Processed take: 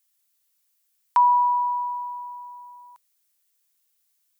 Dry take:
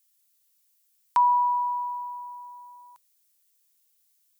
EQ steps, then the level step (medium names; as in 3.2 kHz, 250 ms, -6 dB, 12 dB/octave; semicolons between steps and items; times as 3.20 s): bass shelf 390 Hz -10.5 dB; treble shelf 2.1 kHz -8.5 dB; +6.0 dB